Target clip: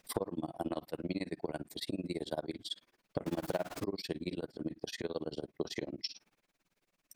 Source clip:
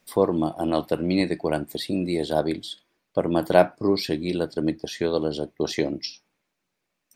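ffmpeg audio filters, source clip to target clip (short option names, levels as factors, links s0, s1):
-filter_complex "[0:a]asettb=1/sr,asplit=3[s0][s1][s2];[s0]atrim=end=3.264[s3];[s1]atrim=start=3.26:end=3.84,asetpts=PTS-STARTPTS,afade=t=in:d=0.004:c=qsin,afade=t=out:st=0.576:d=0.004:c=qsin,aeval=exprs='val(0)+0.5*0.0708*sgn(val(0))':c=same[s4];[s2]atrim=start=3.836[s5];[s3][s4]acrossfade=d=0.004:c1=hsin:c2=qsin[s6];[s6][s5]acrossfade=d=0.004:c1=qsin:c2=hsin,acompressor=threshold=0.0158:ratio=5,tremolo=f=18:d=0.99,volume=1.58"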